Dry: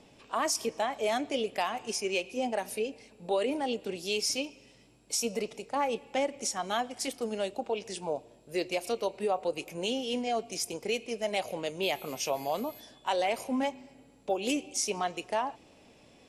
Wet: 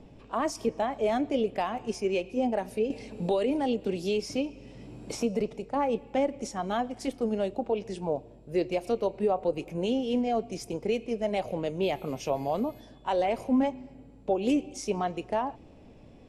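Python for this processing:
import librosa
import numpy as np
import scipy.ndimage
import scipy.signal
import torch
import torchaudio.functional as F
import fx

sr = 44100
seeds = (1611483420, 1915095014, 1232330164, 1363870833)

y = fx.tilt_eq(x, sr, slope=-3.5)
y = fx.band_squash(y, sr, depth_pct=70, at=(2.9, 5.41))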